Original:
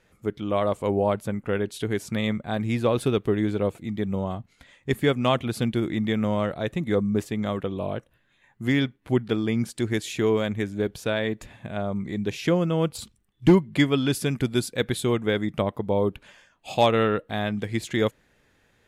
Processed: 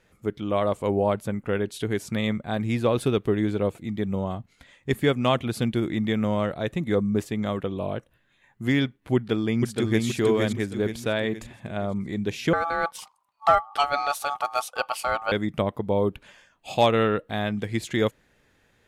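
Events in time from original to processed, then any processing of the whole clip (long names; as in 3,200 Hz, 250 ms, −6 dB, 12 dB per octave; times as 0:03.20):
0:09.15–0:10.05: delay throw 470 ms, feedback 45%, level −3 dB
0:12.53–0:15.32: ring modulation 1,000 Hz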